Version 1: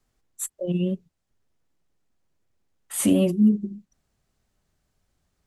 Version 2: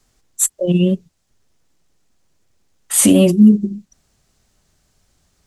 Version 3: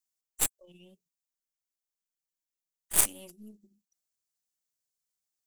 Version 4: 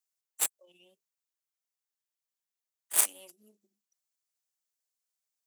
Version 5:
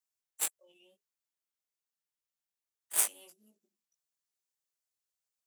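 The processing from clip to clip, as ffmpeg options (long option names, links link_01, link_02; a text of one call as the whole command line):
ffmpeg -i in.wav -af "equalizer=frequency=6300:width_type=o:width=1.7:gain=6.5,alimiter=level_in=11dB:limit=-1dB:release=50:level=0:latency=1,volume=-1dB" out.wav
ffmpeg -i in.wav -af "aemphasis=mode=production:type=riaa,aeval=exprs='4.47*(cos(1*acos(clip(val(0)/4.47,-1,1)))-cos(1*PI/2))+1.41*(cos(3*acos(clip(val(0)/4.47,-1,1)))-cos(3*PI/2))+0.447*(cos(4*acos(clip(val(0)/4.47,-1,1)))-cos(4*PI/2))+0.0631*(cos(5*acos(clip(val(0)/4.47,-1,1)))-cos(5*PI/2))+0.0562*(cos(6*acos(clip(val(0)/4.47,-1,1)))-cos(6*PI/2))':channel_layout=same,volume=-16dB" out.wav
ffmpeg -i in.wav -af "highpass=500,volume=-1dB" out.wav
ffmpeg -i in.wav -af "flanger=delay=17:depth=2.7:speed=0.53" out.wav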